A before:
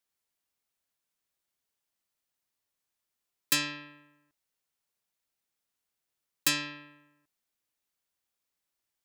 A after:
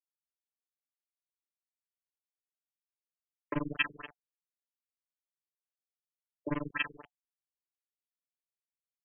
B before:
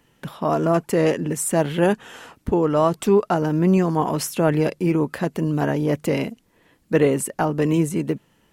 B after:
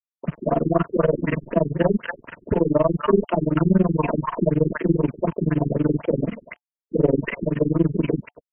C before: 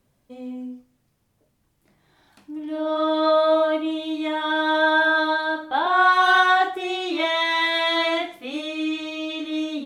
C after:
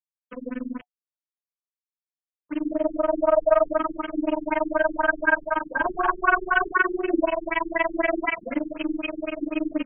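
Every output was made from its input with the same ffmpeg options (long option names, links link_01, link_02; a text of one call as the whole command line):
ffmpeg -i in.wav -filter_complex "[0:a]aeval=exprs='if(lt(val(0),0),0.708*val(0),val(0))':channel_layout=same,acrossover=split=330|1000[link_01][link_02][link_03];[link_01]adelay=30[link_04];[link_03]adelay=270[link_05];[link_04][link_02][link_05]amix=inputs=3:normalize=0,asplit=2[link_06][link_07];[link_07]acompressor=threshold=-29dB:ratio=12,volume=1dB[link_08];[link_06][link_08]amix=inputs=2:normalize=0,acrusher=bits=5:mix=0:aa=0.000001,tremolo=f=21:d=1,acrossover=split=100|3900[link_09][link_10][link_11];[link_10]acontrast=76[link_12];[link_11]asplit=2[link_13][link_14];[link_14]adelay=17,volume=-14dB[link_15];[link_13][link_15]amix=inputs=2:normalize=0[link_16];[link_09][link_12][link_16]amix=inputs=3:normalize=0,asuperstop=centerf=790:order=12:qfactor=5.8,afftfilt=real='re*lt(b*sr/1024,400*pow(3300/400,0.5+0.5*sin(2*PI*4*pts/sr)))':imag='im*lt(b*sr/1024,400*pow(3300/400,0.5+0.5*sin(2*PI*4*pts/sr)))':win_size=1024:overlap=0.75,volume=-1.5dB" out.wav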